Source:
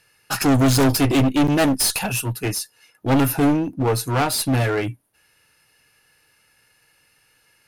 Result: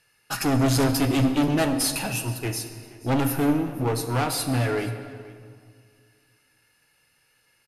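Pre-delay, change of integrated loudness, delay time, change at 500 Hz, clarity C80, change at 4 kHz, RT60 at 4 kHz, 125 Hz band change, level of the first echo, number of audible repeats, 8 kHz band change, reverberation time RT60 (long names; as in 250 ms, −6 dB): 6 ms, −4.5 dB, 476 ms, −4.5 dB, 9.5 dB, −5.0 dB, 1.4 s, −4.0 dB, −20.5 dB, 1, −5.0 dB, 2.0 s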